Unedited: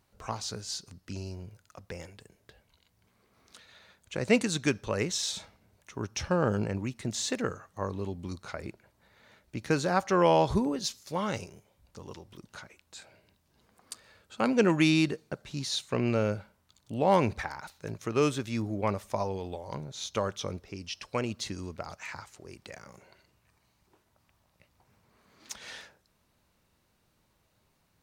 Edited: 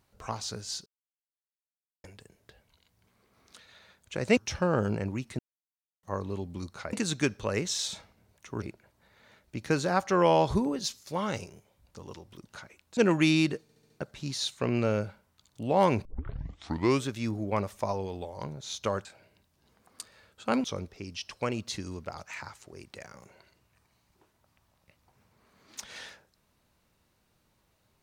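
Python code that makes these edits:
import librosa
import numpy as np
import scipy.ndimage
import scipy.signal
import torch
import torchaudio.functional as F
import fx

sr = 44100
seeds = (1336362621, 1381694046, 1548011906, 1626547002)

y = fx.edit(x, sr, fx.silence(start_s=0.86, length_s=1.18),
    fx.move(start_s=4.37, length_s=1.69, to_s=8.62),
    fx.silence(start_s=7.08, length_s=0.64),
    fx.move(start_s=12.97, length_s=1.59, to_s=20.36),
    fx.stutter(start_s=15.21, slice_s=0.07, count=5),
    fx.tape_start(start_s=17.36, length_s=0.98), tone=tone)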